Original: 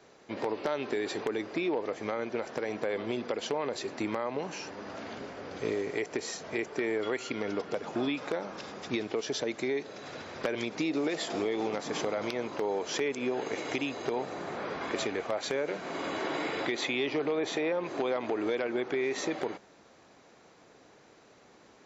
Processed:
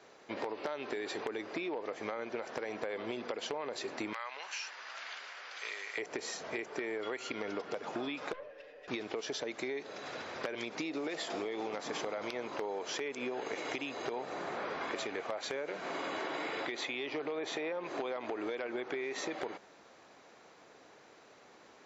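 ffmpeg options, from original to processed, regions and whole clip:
ffmpeg -i in.wav -filter_complex "[0:a]asettb=1/sr,asplit=3[link_01][link_02][link_03];[link_01]atrim=end=4.134[link_04];[link_02]atrim=start=4.13:end=5.98,asetpts=PTS-STARTPTS,afade=type=in:duration=0.004:curve=qsin,afade=type=out:start_time=1.846:duration=0.004:curve=qsin,highpass=1400,equalizer=frequency=3000:width=0.34:gain=3.5[link_05];[link_03]atrim=start=5.976[link_06];[link_04][link_05]acrossfade=duration=0.004:curve1=hsin:curve2=qsin[link_07];[link_07][link_06]acrossfade=duration=0.004:curve1=qsin:curve2=hsin,asettb=1/sr,asplit=3[link_08][link_09][link_10];[link_08]atrim=end=8.334[link_11];[link_09]atrim=start=8.33:end=8.88,asetpts=PTS-STARTPTS,afade=type=in:duration=0.004:curve=qsin,afade=type=out:start_time=0.546:duration=0.004:curve=qsin,asplit=3[link_12][link_13][link_14];[link_12]bandpass=frequency=530:width_type=q:width=8,volume=0dB[link_15];[link_13]bandpass=frequency=1840:width_type=q:width=8,volume=-6dB[link_16];[link_14]bandpass=frequency=2480:width_type=q:width=8,volume=-9dB[link_17];[link_15][link_16][link_17]amix=inputs=3:normalize=0,aeval=exprs='(tanh(79.4*val(0)+0.5)-tanh(0.5))/79.4':channel_layout=same,aecho=1:1:6.8:0.93,atrim=end_sample=24255[link_18];[link_10]atrim=start=8.876[link_19];[link_11][link_18]acrossfade=duration=0.004:curve1=hsin:curve2=qsin[link_20];[link_20][link_19]acrossfade=duration=0.004:curve1=qsin:curve2=hsin,lowshelf=frequency=290:gain=-10.5,acompressor=threshold=-36dB:ratio=6,highshelf=frequency=5400:gain=-5.5,volume=2dB" out.wav

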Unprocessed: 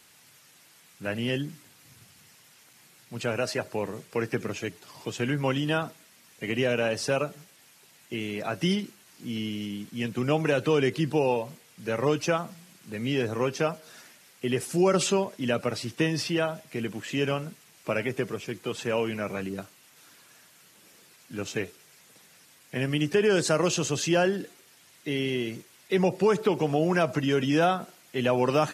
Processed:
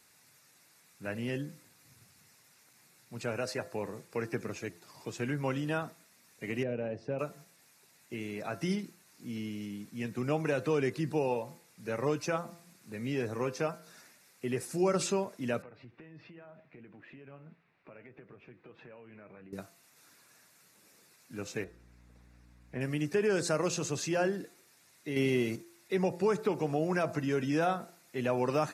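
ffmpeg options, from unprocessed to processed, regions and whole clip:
ffmpeg -i in.wav -filter_complex "[0:a]asettb=1/sr,asplit=3[link_01][link_02][link_03];[link_01]atrim=end=6.634[link_04];[link_02]atrim=start=6.63:end=7.19,asetpts=PTS-STARTPTS,afade=type=in:duration=0.004:curve=qsin,afade=type=out:start_time=0.556:duration=0.004:curve=qsin,lowpass=1600,equalizer=frequency=1200:width=1.1:gain=-12.5[link_05];[link_03]atrim=start=7.186[link_06];[link_04][link_05]acrossfade=duration=0.004:curve1=hsin:curve2=qsin[link_07];[link_07][link_06]acrossfade=duration=0.004:curve1=qsin:curve2=hsin,asettb=1/sr,asplit=3[link_08][link_09][link_10];[link_08]atrim=end=15.624[link_11];[link_09]atrim=start=15.62:end=19.53,asetpts=PTS-STARTPTS,afade=type=in:duration=0.004:curve=qsin,afade=type=out:start_time=3.906:duration=0.004:curve=qsin,lowpass=frequency=2800:width=0.5412,lowpass=frequency=2800:width=1.3066,acompressor=threshold=-38dB:ratio=6:attack=3.2:release=140:knee=1:detection=peak,flanger=delay=6:depth=2.1:regen=77:speed=1.6:shape=sinusoidal[link_12];[link_10]atrim=start=19.526[link_13];[link_11][link_12]acrossfade=duration=0.004:curve1=hsin:curve2=qsin[link_14];[link_14][link_13]acrossfade=duration=0.004:curve1=qsin:curve2=hsin,asettb=1/sr,asplit=3[link_15][link_16][link_17];[link_15]atrim=end=21.644[link_18];[link_16]atrim=start=21.64:end=22.81,asetpts=PTS-STARTPTS,afade=type=in:duration=0.004:curve=qsin,afade=type=out:start_time=1.166:duration=0.004:curve=qsin,lowpass=frequency=1500:poles=1,aeval=exprs='val(0)+0.00251*(sin(2*PI*60*n/s)+sin(2*PI*2*60*n/s)/2+sin(2*PI*3*60*n/s)/3+sin(2*PI*4*60*n/s)/4+sin(2*PI*5*60*n/s)/5)':channel_layout=same[link_19];[link_17]atrim=start=22.806[link_20];[link_18][link_19]acrossfade=duration=0.004:curve1=hsin:curve2=qsin[link_21];[link_21][link_20]acrossfade=duration=0.004:curve1=qsin:curve2=hsin,asettb=1/sr,asplit=3[link_22][link_23][link_24];[link_22]atrim=end=25.164[link_25];[link_23]atrim=start=25.16:end=25.56,asetpts=PTS-STARTPTS,afade=type=in:duration=0.004:curve=qsin,afade=type=out:start_time=0.396:duration=0.004:curve=qsin,bandreject=frequency=1700:width=10,acontrast=70[link_26];[link_24]atrim=start=25.556[link_27];[link_25][link_26]acrossfade=duration=0.004:curve1=hsin:curve2=qsin[link_28];[link_28][link_27]acrossfade=duration=0.004:curve1=qsin:curve2=hsin,equalizer=frequency=3100:width_type=o:width=0.24:gain=-11.5,bandreject=frequency=170.9:width_type=h:width=4,bandreject=frequency=341.8:width_type=h:width=4,bandreject=frequency=512.7:width_type=h:width=4,bandreject=frequency=683.6:width_type=h:width=4,bandreject=frequency=854.5:width_type=h:width=4,bandreject=frequency=1025.4:width_type=h:width=4,bandreject=frequency=1196.3:width_type=h:width=4,bandreject=frequency=1367.2:width_type=h:width=4,bandreject=frequency=1538.1:width_type=h:width=4,bandreject=frequency=1709:width_type=h:width=4,bandreject=frequency=1879.9:width_type=h:width=4,volume=-6dB" out.wav

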